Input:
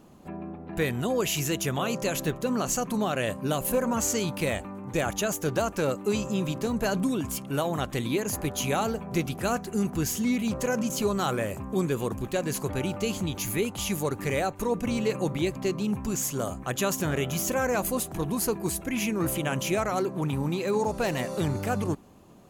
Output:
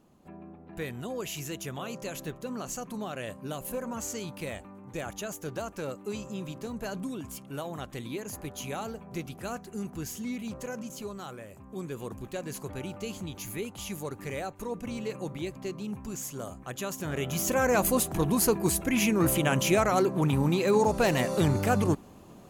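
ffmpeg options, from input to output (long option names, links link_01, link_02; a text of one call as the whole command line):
ffmpeg -i in.wav -af "volume=10dB,afade=type=out:start_time=10.5:duration=0.96:silence=0.446684,afade=type=in:start_time=11.46:duration=0.68:silence=0.398107,afade=type=in:start_time=16.99:duration=0.85:silence=0.281838" out.wav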